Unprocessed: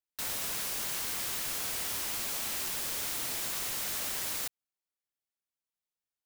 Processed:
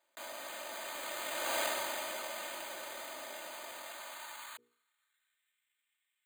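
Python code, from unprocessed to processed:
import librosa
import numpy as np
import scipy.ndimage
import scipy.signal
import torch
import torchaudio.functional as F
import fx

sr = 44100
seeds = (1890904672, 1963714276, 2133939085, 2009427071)

y = fx.doppler_pass(x, sr, speed_mps=31, closest_m=2.8, pass_at_s=1.59)
y = fx.filter_sweep_highpass(y, sr, from_hz=600.0, to_hz=2100.0, start_s=3.7, end_s=5.58, q=2.0)
y = np.repeat(scipy.signal.resample_poly(y, 1, 8), 8)[:len(y)]
y = fx.bass_treble(y, sr, bass_db=14, treble_db=5)
y = fx.hum_notches(y, sr, base_hz=60, count=8)
y = y + 0.7 * np.pad(y, (int(3.3 * sr / 1000.0), 0))[:len(y)]
y = fx.env_flatten(y, sr, amount_pct=50)
y = y * 10.0 ** (6.0 / 20.0)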